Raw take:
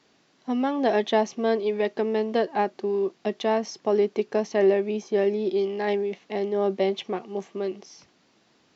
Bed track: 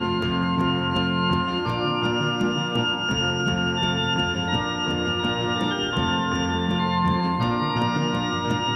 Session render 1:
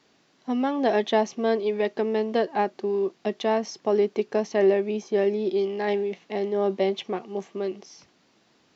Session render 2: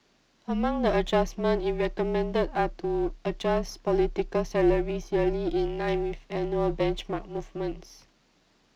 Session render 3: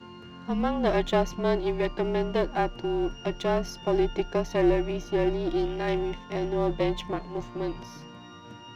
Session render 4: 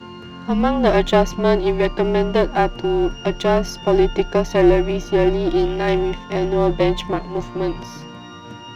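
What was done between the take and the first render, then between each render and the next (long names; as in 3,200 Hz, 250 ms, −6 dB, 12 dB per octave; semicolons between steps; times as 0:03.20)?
0:05.87–0:06.86: hum removal 166.9 Hz, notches 31
gain on one half-wave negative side −7 dB; frequency shifter −34 Hz
mix in bed track −21.5 dB
level +9 dB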